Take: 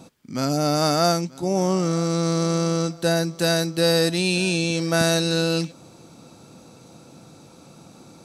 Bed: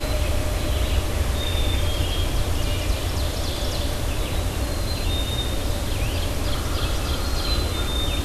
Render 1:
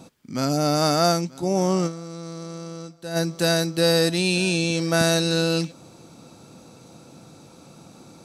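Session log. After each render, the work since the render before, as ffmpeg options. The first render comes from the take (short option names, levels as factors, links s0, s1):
-filter_complex "[0:a]asplit=3[s0][s1][s2];[s0]atrim=end=2.11,asetpts=PTS-STARTPTS,afade=t=out:st=1.86:d=0.25:c=exp:silence=0.211349[s3];[s1]atrim=start=2.11:end=2.92,asetpts=PTS-STARTPTS,volume=0.211[s4];[s2]atrim=start=2.92,asetpts=PTS-STARTPTS,afade=t=in:d=0.25:c=exp:silence=0.211349[s5];[s3][s4][s5]concat=n=3:v=0:a=1"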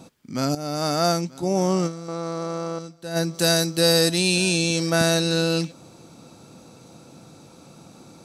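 -filter_complex "[0:a]asettb=1/sr,asplit=3[s0][s1][s2];[s0]atrim=end=2.084[s3];[s1]atrim=start=2.08:end=2.79,asetpts=PTS-STARTPTS,afade=t=in:d=0.004:c=qsin,afade=t=out:st=0.706:d=0.004:c=qsin,equalizer=f=850:w=0.52:g=13[s4];[s2]atrim=start=2.786[s5];[s3][s4]acrossfade=d=0.004:c1=hsin:c2=qsin[s6];[s6][s5]acrossfade=d=0.004:c1=qsin:c2=hsin,asettb=1/sr,asplit=3[s7][s8][s9];[s7]atrim=end=3.344[s10];[s8]atrim=start=3.34:end=4.9,asetpts=PTS-STARTPTS,afade=t=in:d=0.004:c=qsin,afade=t=out:st=1.556:d=0.004:c=qsin,bass=f=250:g=0,treble=f=4000:g=6[s11];[s9]atrim=start=4.896[s12];[s10][s11]acrossfade=d=0.004:c1=hsin:c2=qsin[s13];[s13][s12]acrossfade=d=0.004:c1=qsin:c2=hsin,asplit=2[s14][s15];[s14]atrim=end=0.55,asetpts=PTS-STARTPTS,afade=t=out:st=0.546:d=0.004:c=hsin:silence=0.237137[s16];[s15]atrim=start=0.55,asetpts=PTS-STARTPTS,afade=t=in:d=0.87:c=qsin:silence=0.237137[s17];[s16][s17]concat=n=2:v=0:a=1"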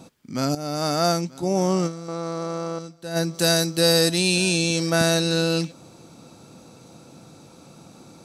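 -af anull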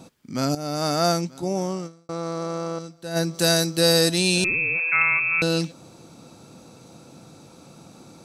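-filter_complex "[0:a]asettb=1/sr,asplit=3[s0][s1][s2];[s0]atrim=end=4.444[s3];[s1]atrim=start=4.44:end=5.42,asetpts=PTS-STARTPTS,afade=t=in:d=0.004:c=qsin,afade=t=out:st=0.976:d=0.004:c=qsin,lowpass=f=2400:t=q:w=0.5098,lowpass=f=2400:t=q:w=0.6013,lowpass=f=2400:t=q:w=0.9,lowpass=f=2400:t=q:w=2.563,afreqshift=-2800[s4];[s2]atrim=start=5.416[s5];[s3][s4]acrossfade=d=0.004:c1=hsin:c2=qsin[s6];[s6][s5]acrossfade=d=0.004:c1=qsin:c2=hsin,asplit=2[s7][s8];[s7]atrim=end=2.09,asetpts=PTS-STARTPTS,afade=t=out:st=1.28:d=0.81[s9];[s8]atrim=start=2.09,asetpts=PTS-STARTPTS,afade=t=in:d=0.004:c=hsin[s10];[s9][s10]concat=n=2:v=0:a=1"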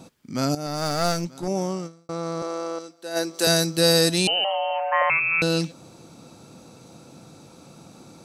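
-filter_complex "[0:a]asettb=1/sr,asplit=3[s0][s1][s2];[s0]atrim=end=0.664[s3];[s1]atrim=start=0.66:end=1.48,asetpts=PTS-STARTPTS,afade=t=in:d=0.004:c=qsin,afade=t=out:st=0.816:d=0.004:c=qsin,aeval=exprs='clip(val(0),-1,0.0299)':c=same[s4];[s2]atrim=start=1.476[s5];[s3][s4]acrossfade=d=0.004:c1=hsin:c2=qsin[s6];[s6][s5]acrossfade=d=0.004:c1=qsin:c2=hsin,asettb=1/sr,asplit=3[s7][s8][s9];[s7]atrim=end=2.424[s10];[s8]atrim=start=2.42:end=3.47,asetpts=PTS-STARTPTS,afade=t=in:d=0.004:c=qsin,afade=t=out:st=1.046:d=0.004:c=qsin,highpass=f=270:w=0.5412,highpass=f=270:w=1.3066[s11];[s9]atrim=start=3.466[s12];[s10][s11]acrossfade=d=0.004:c1=hsin:c2=qsin[s13];[s13][s12]acrossfade=d=0.004:c1=qsin:c2=hsin,asettb=1/sr,asplit=3[s14][s15][s16];[s14]atrim=end=4.274[s17];[s15]atrim=start=4.27:end=5.1,asetpts=PTS-STARTPTS,afade=t=in:d=0.004:c=qsin,afade=t=out:st=0.826:d=0.004:c=qsin,lowpass=f=2700:t=q:w=0.5098,lowpass=f=2700:t=q:w=0.6013,lowpass=f=2700:t=q:w=0.9,lowpass=f=2700:t=q:w=2.563,afreqshift=-3200[s18];[s16]atrim=start=5.096[s19];[s17][s18]acrossfade=d=0.004:c1=hsin:c2=qsin[s20];[s20][s19]acrossfade=d=0.004:c1=qsin:c2=hsin"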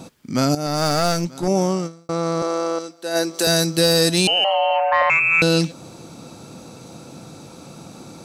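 -af "acontrast=89,alimiter=limit=0.398:level=0:latency=1:release=389"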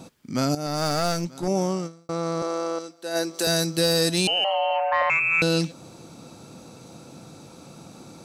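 -af "volume=0.562"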